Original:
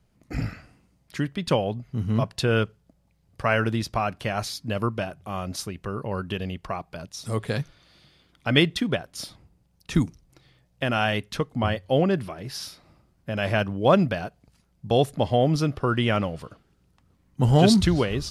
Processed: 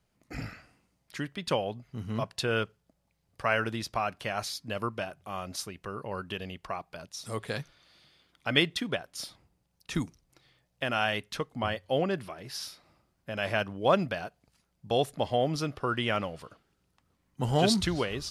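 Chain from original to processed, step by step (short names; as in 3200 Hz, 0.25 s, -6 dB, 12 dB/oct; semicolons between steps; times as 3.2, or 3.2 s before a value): low shelf 340 Hz -9 dB; gain -3 dB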